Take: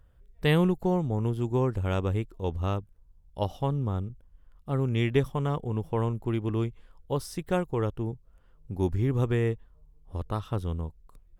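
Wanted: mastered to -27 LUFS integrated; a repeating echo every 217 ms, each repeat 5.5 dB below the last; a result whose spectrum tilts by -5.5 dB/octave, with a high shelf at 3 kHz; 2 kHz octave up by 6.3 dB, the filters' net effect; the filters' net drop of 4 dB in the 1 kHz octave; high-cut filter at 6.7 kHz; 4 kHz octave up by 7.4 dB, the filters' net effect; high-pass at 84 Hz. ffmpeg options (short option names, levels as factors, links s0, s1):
-af "highpass=84,lowpass=6700,equalizer=f=1000:t=o:g=-7.5,equalizer=f=2000:t=o:g=6.5,highshelf=f=3000:g=3.5,equalizer=f=4000:t=o:g=5.5,aecho=1:1:217|434|651|868|1085|1302|1519:0.531|0.281|0.149|0.079|0.0419|0.0222|0.0118,volume=1.19"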